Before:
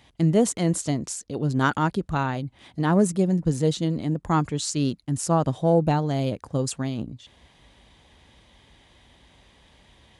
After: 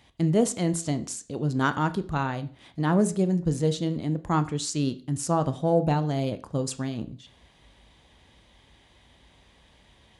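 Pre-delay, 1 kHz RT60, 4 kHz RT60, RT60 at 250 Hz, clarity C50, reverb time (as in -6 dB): 24 ms, 0.40 s, 0.40 s, 0.40 s, 17.0 dB, 0.40 s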